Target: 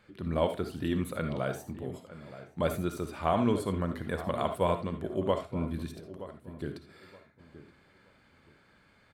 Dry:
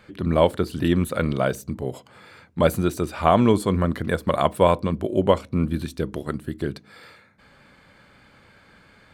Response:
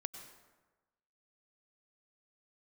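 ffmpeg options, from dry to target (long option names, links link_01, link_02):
-filter_complex "[0:a]asettb=1/sr,asplit=3[link_01][link_02][link_03];[link_01]atrim=end=5.904[link_04];[link_02]atrim=start=5.9:end=6.59,asetpts=PTS-STARTPTS,afade=type=in:duration=0.004:curve=qsin,afade=type=out:start_time=0.686:duration=0.004:curve=qsin,acompressor=threshold=-37dB:ratio=6[link_05];[link_03]atrim=start=6.586[link_06];[link_04][link_05]acrossfade=duration=0.004:curve1=hsin:curve2=qsin[link_07];[link_07][link_06]acrossfade=duration=0.004:curve1=qsin:curve2=hsin,flanger=delay=8.5:depth=7.6:regen=-85:speed=1.1:shape=triangular,asplit=2[link_08][link_09];[link_09]adelay=923,lowpass=frequency=1600:poles=1,volume=-14dB,asplit=2[link_10][link_11];[link_11]adelay=923,lowpass=frequency=1600:poles=1,volume=0.25,asplit=2[link_12][link_13];[link_13]adelay=923,lowpass=frequency=1600:poles=1,volume=0.25[link_14];[link_08][link_10][link_12][link_14]amix=inputs=4:normalize=0[link_15];[1:a]atrim=start_sample=2205,afade=type=out:start_time=0.21:duration=0.01,atrim=end_sample=9702,asetrate=79380,aresample=44100[link_16];[link_15][link_16]afir=irnorm=-1:irlink=0,volume=2dB"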